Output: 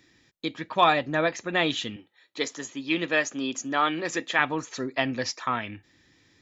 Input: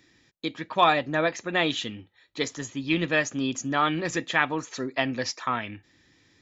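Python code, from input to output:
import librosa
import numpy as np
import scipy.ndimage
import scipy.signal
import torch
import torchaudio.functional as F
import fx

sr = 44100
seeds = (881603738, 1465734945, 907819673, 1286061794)

y = fx.highpass(x, sr, hz=260.0, slope=12, at=(1.96, 4.39))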